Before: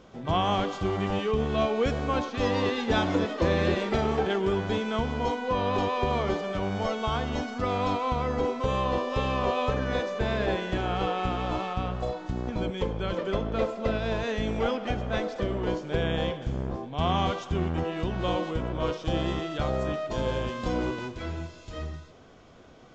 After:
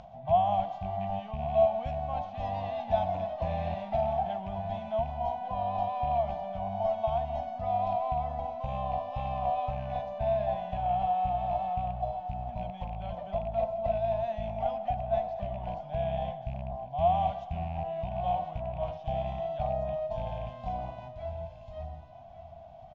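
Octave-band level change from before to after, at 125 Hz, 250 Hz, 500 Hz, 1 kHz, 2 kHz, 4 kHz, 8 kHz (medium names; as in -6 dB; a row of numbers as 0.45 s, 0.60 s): -6.0 dB, -13.0 dB, -3.0 dB, +1.0 dB, -16.5 dB, -16.0 dB, no reading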